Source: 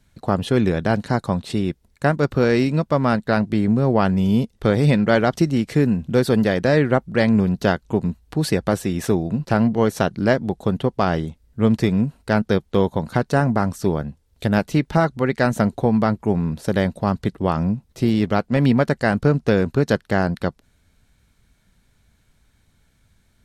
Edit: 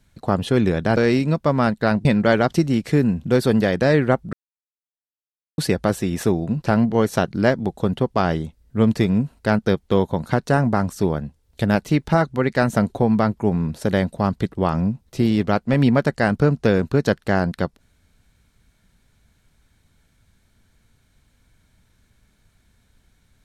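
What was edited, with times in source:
0.97–2.43 cut
3.51–4.88 cut
7.16–8.41 mute

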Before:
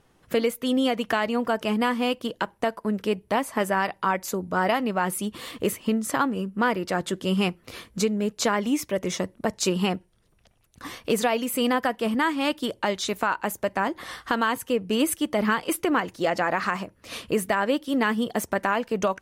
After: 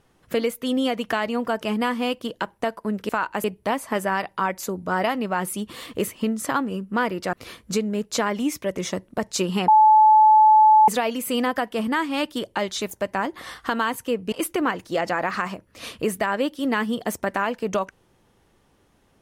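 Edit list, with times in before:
6.98–7.6 cut
9.95–11.15 bleep 864 Hz -10 dBFS
13.18–13.53 move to 3.09
14.94–15.61 cut

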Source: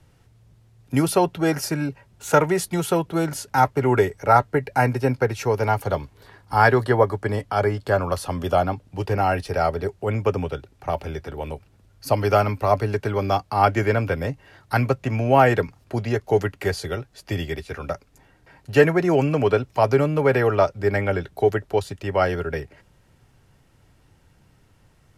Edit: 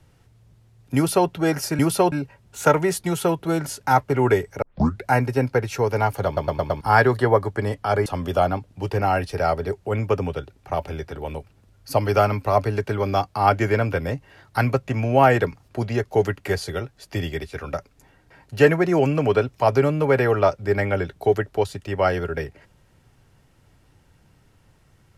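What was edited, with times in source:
0.96–1.29 copy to 1.79
4.29 tape start 0.43 s
5.93 stutter in place 0.11 s, 5 plays
7.73–8.22 cut

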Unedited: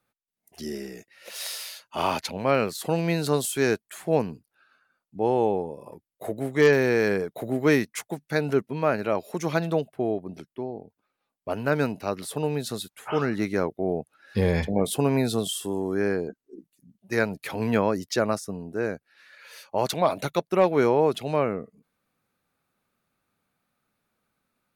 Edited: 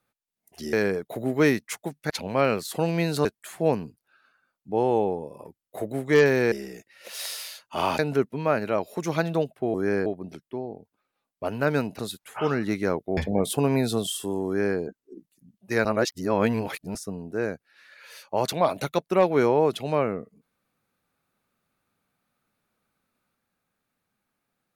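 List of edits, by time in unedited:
0.73–2.2 swap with 6.99–8.36
3.35–3.72 cut
12.04–12.7 cut
13.88–14.58 cut
15.87–16.19 copy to 10.11
17.26–18.36 reverse

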